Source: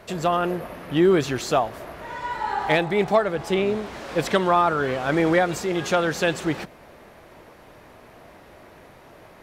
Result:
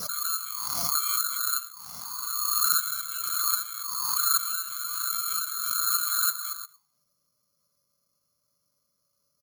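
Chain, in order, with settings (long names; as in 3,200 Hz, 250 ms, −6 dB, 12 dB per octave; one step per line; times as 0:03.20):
neighbouring bands swapped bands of 2,000 Hz
low-shelf EQ 200 Hz +10.5 dB
in parallel at −3.5 dB: bit reduction 5 bits
on the sum: drawn EQ curve 220 Hz 0 dB, 340 Hz −18 dB, 800 Hz −24 dB, 1,200 Hz +8 dB, 2,400 Hz −28 dB, 5,500 Hz +12 dB
treble cut that deepens with the level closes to 2,900 Hz, closed at −26 dBFS
comb filter 6.8 ms, depth 32%
echo ahead of the sound 62 ms −16.5 dB
envelope filter 480–1,400 Hz, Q 12, up, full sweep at −31.5 dBFS
bad sample-rate conversion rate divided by 8×, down filtered, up zero stuff
background raised ahead of every attack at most 25 dB per second
level +2.5 dB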